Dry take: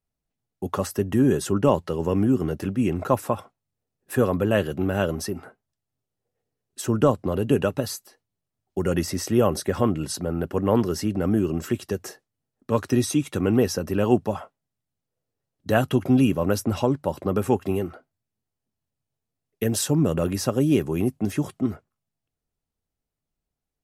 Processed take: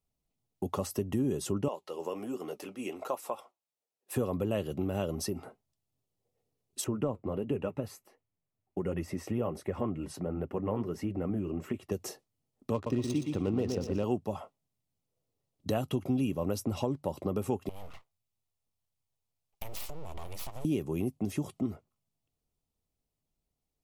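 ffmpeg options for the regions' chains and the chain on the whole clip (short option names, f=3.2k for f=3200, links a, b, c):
-filter_complex "[0:a]asettb=1/sr,asplit=3[a][b][c];[a]atrim=end=1.684[d];[b]atrim=start=1.68:end=4.16,asetpts=PTS-STARTPTS,afade=t=in:d=0.004:c=qsin,afade=t=out:st=2.476:d=0.004:c=qsin,highpass=520,flanger=delay=3.6:depth=7.6:regen=-62:speed=1.3:shape=triangular[e];[c]atrim=start=4.156[f];[d][e]acrossfade=d=0.004:c1=hsin:c2=qsin[g];[g][f]acrossfade=d=0.004:c1=qsin:c2=hsin,asettb=1/sr,asplit=3[h][i][j];[h]atrim=end=6.844[k];[i]atrim=start=6.84:end=11.92,asetpts=PTS-STARTPTS,afade=t=in:d=0.004:c=qsin,afade=t=out:st=5.076:d=0.004:c=qsin,flanger=delay=1.5:depth=9:regen=-47:speed=1.4:shape=triangular,highshelf=f=3k:t=q:w=1.5:g=-10.5[l];[j]atrim=start=11.916[m];[k][l]acrossfade=d=0.004:c1=hsin:c2=qsin[n];[n][m]acrossfade=d=0.004:c1=qsin:c2=hsin,asettb=1/sr,asplit=3[o][p][q];[o]atrim=end=12.744[r];[p]atrim=start=12.74:end=14.04,asetpts=PTS-STARTPTS,afade=t=in:d=0.004:c=qsin,afade=t=out:st=1.296:d=0.004:c=qsin,adynamicsmooth=sensitivity=5.5:basefreq=1.2k,aecho=1:1:120|240|360|480:0.473|0.147|0.0455|0.0141,atrim=end_sample=57330[s];[q]atrim=start=14.036[t];[r][s]acrossfade=d=0.004:c1=hsin:c2=qsin[u];[u][t]acrossfade=d=0.004:c1=qsin:c2=hsin,asettb=1/sr,asplit=3[v][w][x];[v]atrim=end=17.694[y];[w]atrim=start=17.69:end=20.65,asetpts=PTS-STARTPTS,afade=t=in:d=0.004:c=qsin,afade=t=out:st=2.956:d=0.004:c=qsin,acompressor=threshold=-31dB:ratio=12:attack=3.2:release=140:knee=1:detection=peak,aeval=exprs='abs(val(0))':c=same,equalizer=f=260:t=o:w=1.7:g=-11[z];[x]atrim=start=20.646[aa];[y][z]acrossfade=d=0.004:c1=hsin:c2=qsin[ab];[ab][aa]acrossfade=d=0.004:c1=qsin:c2=hsin,equalizer=f=1.6k:w=3.2:g=-12.5,acompressor=threshold=-32dB:ratio=2.5"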